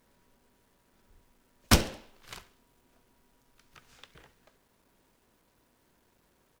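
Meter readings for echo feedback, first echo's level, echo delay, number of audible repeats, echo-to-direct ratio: 47%, −21.5 dB, 69 ms, 3, −20.5 dB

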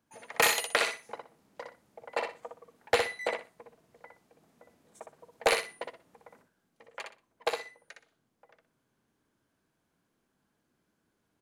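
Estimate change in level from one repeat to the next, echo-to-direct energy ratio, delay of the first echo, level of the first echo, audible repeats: −13.0 dB, −5.0 dB, 61 ms, −5.0 dB, 3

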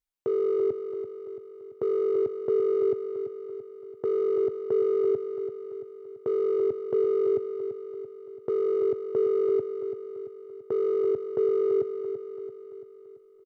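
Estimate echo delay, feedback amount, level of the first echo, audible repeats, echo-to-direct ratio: 337 ms, 54%, −9.0 dB, 5, −7.5 dB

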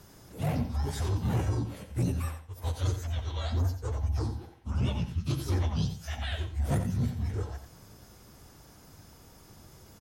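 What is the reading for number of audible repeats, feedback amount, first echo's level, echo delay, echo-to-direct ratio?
2, 17%, −9.5 dB, 88 ms, −9.5 dB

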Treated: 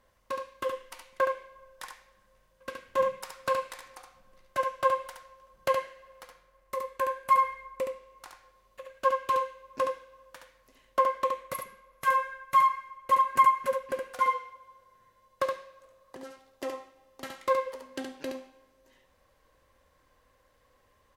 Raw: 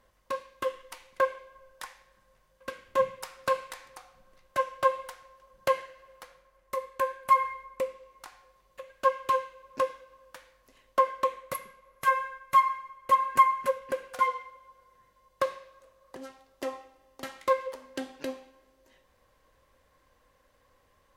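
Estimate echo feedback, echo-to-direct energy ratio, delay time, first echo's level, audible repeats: repeats not evenly spaced, −5.0 dB, 70 ms, −5.0 dB, 1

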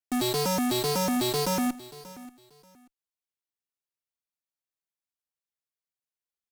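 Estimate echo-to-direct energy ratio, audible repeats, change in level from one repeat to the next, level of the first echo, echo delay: −18.0 dB, 2, −13.0 dB, −18.0 dB, 584 ms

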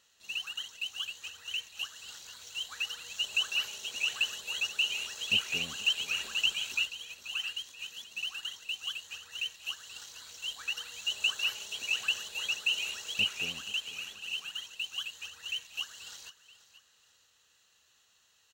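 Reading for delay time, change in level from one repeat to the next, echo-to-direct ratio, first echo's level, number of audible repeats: 482 ms, −7.5 dB, −15.5 dB, −16.0 dB, 2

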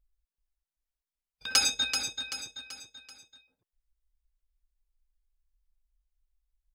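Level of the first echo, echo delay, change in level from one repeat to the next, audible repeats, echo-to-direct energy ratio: −7.0 dB, 384 ms, −7.0 dB, 4, −6.0 dB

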